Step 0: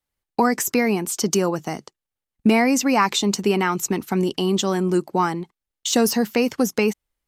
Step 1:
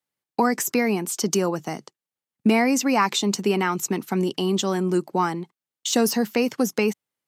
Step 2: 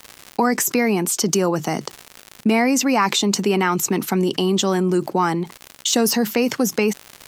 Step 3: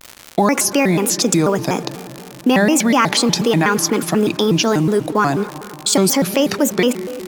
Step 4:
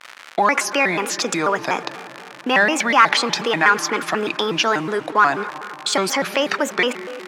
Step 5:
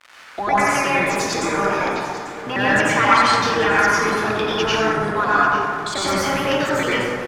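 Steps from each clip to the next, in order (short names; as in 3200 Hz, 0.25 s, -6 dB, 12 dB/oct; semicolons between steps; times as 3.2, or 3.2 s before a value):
HPF 120 Hz 24 dB/oct; gain -2 dB
crackle 140/s -52 dBFS; fast leveller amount 50%
in parallel at -4 dB: requantised 6-bit, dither none; on the sum: reverb RT60 3.2 s, pre-delay 99 ms, DRR 13.5 dB; shaped vibrato square 4.1 Hz, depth 250 cents; gain -1 dB
band-pass 1600 Hz, Q 1.1; in parallel at -8 dB: soft clip -18.5 dBFS, distortion -10 dB; on the sum: gain +3.5 dB
octaver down 1 oct, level -5 dB; echo 0.843 s -15 dB; plate-style reverb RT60 1.8 s, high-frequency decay 0.4×, pre-delay 80 ms, DRR -9 dB; gain -9 dB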